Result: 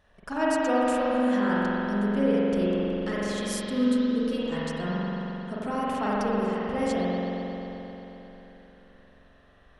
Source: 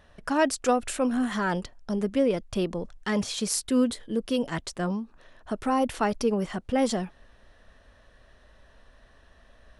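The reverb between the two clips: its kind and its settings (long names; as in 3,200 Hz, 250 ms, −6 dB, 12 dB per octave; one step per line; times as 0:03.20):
spring reverb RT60 3.7 s, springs 44 ms, chirp 80 ms, DRR −8 dB
level −8 dB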